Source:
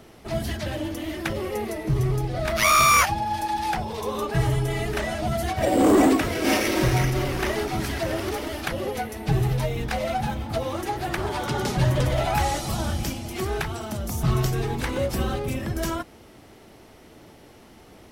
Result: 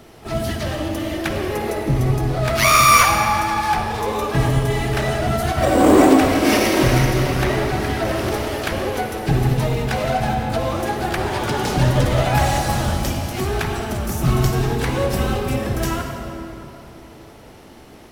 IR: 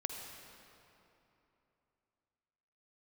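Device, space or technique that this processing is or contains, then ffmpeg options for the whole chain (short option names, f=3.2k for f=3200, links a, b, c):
shimmer-style reverb: -filter_complex "[0:a]asettb=1/sr,asplit=3[a][b][c];[a]atrim=end=7.444[d];[b]atrim=start=7.44:end=8.05,asetpts=PTS-STARTPTS,afade=t=in:d=0.004:c=qsin,afade=t=out:st=0.606:d=0.004:c=qsin,acrossover=split=2900[e][f];[f]acompressor=threshold=-40dB:ratio=4:attack=1:release=60[g];[e][g]amix=inputs=2:normalize=0[h];[c]atrim=start=8.046[i];[d][h]acrossfade=d=0.004:c1=hsin:c2=qsin[j];[j][i]acrossfade=d=0.004:c1=qsin:c2=hsin,asplit=2[k][l];[l]asetrate=88200,aresample=44100,atempo=0.5,volume=-12dB[m];[k][m]amix=inputs=2:normalize=0[n];[1:a]atrim=start_sample=2205[o];[n][o]afir=irnorm=-1:irlink=0,volume=4.5dB"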